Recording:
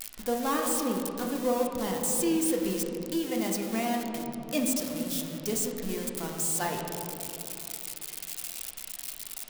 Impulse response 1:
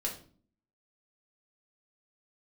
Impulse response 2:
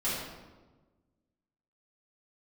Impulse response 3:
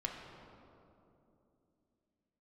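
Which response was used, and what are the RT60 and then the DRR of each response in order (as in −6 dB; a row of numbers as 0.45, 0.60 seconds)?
3; 0.45, 1.3, 2.9 seconds; −2.0, −11.0, 0.0 decibels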